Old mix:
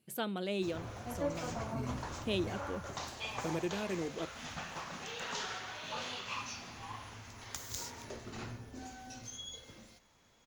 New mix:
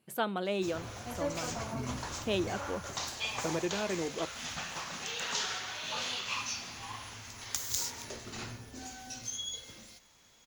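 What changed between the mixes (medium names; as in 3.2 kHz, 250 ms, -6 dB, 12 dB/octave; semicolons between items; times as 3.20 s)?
speech: add peaking EQ 990 Hz +8.5 dB 1.9 oct; background: add treble shelf 2.3 kHz +10 dB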